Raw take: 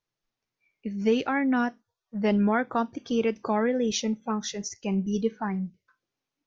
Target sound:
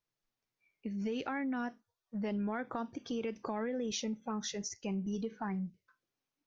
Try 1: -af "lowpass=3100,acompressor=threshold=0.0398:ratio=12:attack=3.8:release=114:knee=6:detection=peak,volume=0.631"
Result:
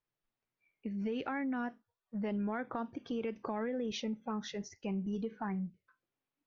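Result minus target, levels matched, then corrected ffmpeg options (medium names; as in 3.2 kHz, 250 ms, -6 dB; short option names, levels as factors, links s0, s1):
4 kHz band -2.5 dB
-af "acompressor=threshold=0.0398:ratio=12:attack=3.8:release=114:knee=6:detection=peak,volume=0.631"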